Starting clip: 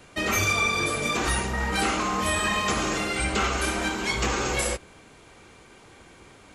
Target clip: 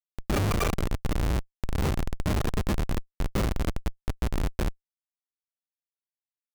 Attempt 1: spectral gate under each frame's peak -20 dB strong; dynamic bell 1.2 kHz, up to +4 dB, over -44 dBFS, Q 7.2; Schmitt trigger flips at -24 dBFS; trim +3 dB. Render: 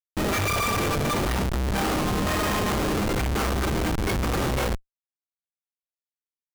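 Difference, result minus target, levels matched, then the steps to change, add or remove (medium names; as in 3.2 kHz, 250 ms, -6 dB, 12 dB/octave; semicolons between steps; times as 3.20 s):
Schmitt trigger: distortion -13 dB
change: Schmitt trigger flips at -18 dBFS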